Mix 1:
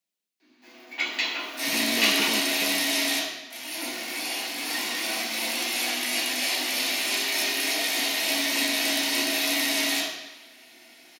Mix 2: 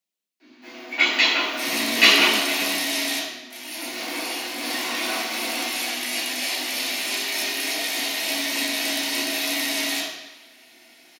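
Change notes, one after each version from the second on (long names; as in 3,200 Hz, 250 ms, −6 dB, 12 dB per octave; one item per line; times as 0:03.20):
first sound: send +10.0 dB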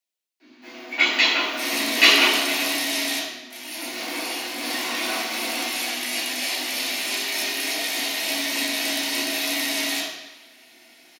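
speech: add Bessel high-pass filter 390 Hz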